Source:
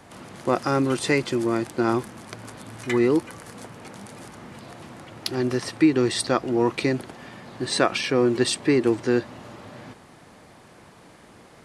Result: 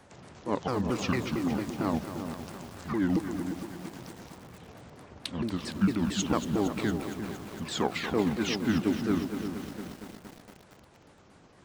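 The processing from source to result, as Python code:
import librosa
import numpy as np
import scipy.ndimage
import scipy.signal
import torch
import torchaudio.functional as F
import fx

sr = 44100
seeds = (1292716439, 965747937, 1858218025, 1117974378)

y = fx.pitch_ramps(x, sr, semitones=-10.0, every_ms=226)
y = fx.echo_filtered(y, sr, ms=349, feedback_pct=27, hz=1000.0, wet_db=-8.0)
y = fx.echo_crushed(y, sr, ms=231, feedback_pct=80, bits=6, wet_db=-10.0)
y = y * 10.0 ** (-6.5 / 20.0)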